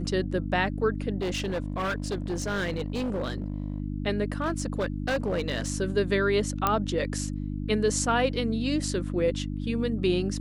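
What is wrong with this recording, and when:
mains hum 50 Hz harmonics 6 −32 dBFS
0:01.20–0:03.80: clipping −25.5 dBFS
0:04.40–0:05.70: clipping −22.5 dBFS
0:06.67: click −9 dBFS

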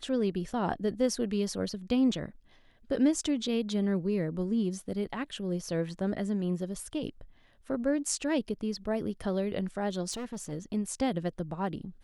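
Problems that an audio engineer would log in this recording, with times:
0:10.11–0:10.53: clipping −34 dBFS

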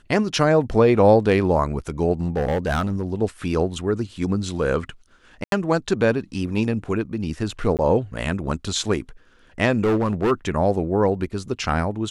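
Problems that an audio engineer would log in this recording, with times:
0:02.21–0:03.04: clipping −17.5 dBFS
0:05.44–0:05.52: drop-out 82 ms
0:07.77–0:07.79: drop-out 18 ms
0:09.81–0:10.32: clipping −16 dBFS

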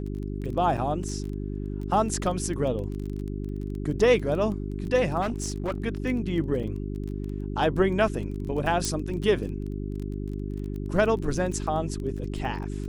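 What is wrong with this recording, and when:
surface crackle 17 per second −33 dBFS
mains hum 50 Hz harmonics 8 −32 dBFS
0:00.77–0:00.78: drop-out 5.7 ms
0:05.21–0:05.80: clipping −24 dBFS
0:06.63: drop-out 4.8 ms
0:08.85: click −13 dBFS

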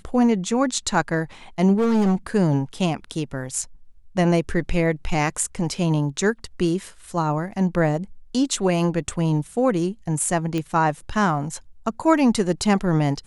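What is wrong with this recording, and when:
0:01.78–0:02.27: clipping −16 dBFS
0:10.58: click −14 dBFS

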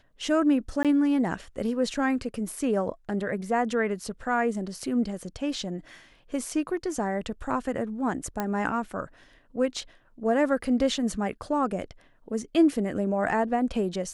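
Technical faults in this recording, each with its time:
0:00.83–0:00.85: drop-out 17 ms
0:08.40: click −14 dBFS

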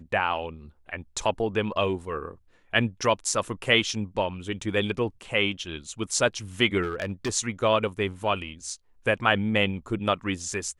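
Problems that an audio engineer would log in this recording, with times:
0:06.82–0:07.30: clipping −23.5 dBFS

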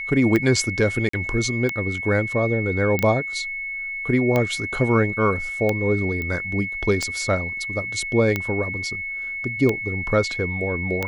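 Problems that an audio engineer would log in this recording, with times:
scratch tick 45 rpm −9 dBFS
whistle 2,200 Hz −27 dBFS
0:01.09–0:01.13: drop-out 44 ms
0:02.99: click −9 dBFS
0:06.22: click −17 dBFS

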